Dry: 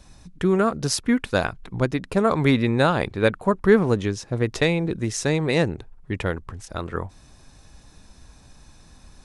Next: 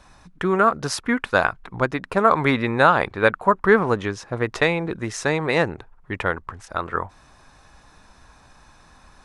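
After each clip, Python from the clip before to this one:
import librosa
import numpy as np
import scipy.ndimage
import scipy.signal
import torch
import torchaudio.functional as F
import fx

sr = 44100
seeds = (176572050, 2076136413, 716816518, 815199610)

y = fx.peak_eq(x, sr, hz=1200.0, db=13.5, octaves=2.3)
y = y * librosa.db_to_amplitude(-5.0)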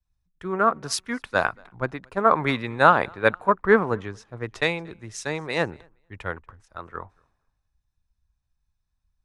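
y = fx.echo_feedback(x, sr, ms=235, feedback_pct=38, wet_db=-24.0)
y = fx.band_widen(y, sr, depth_pct=100)
y = y * librosa.db_to_amplitude(-6.0)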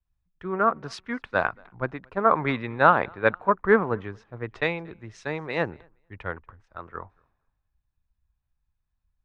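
y = scipy.signal.sosfilt(scipy.signal.butter(2, 2900.0, 'lowpass', fs=sr, output='sos'), x)
y = y * librosa.db_to_amplitude(-1.5)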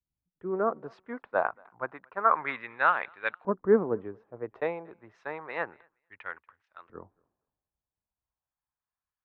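y = fx.high_shelf(x, sr, hz=3600.0, db=-7.5)
y = fx.filter_lfo_bandpass(y, sr, shape='saw_up', hz=0.29, low_hz=260.0, high_hz=3400.0, q=1.1)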